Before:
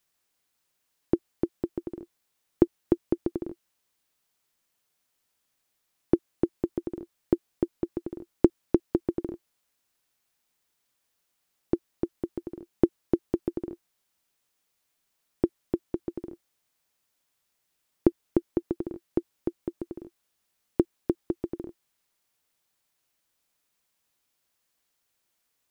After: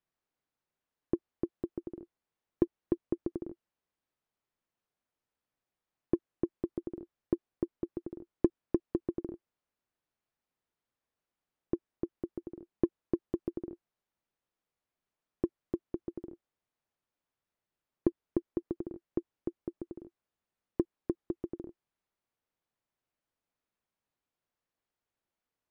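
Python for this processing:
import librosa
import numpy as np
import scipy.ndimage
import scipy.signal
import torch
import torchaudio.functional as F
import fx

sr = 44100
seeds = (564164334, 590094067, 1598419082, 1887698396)

p1 = fx.lowpass(x, sr, hz=1100.0, slope=6)
p2 = 10.0 ** (-19.0 / 20.0) * np.tanh(p1 / 10.0 ** (-19.0 / 20.0))
p3 = p1 + (p2 * 10.0 ** (-8.0 / 20.0))
y = p3 * 10.0 ** (-8.0 / 20.0)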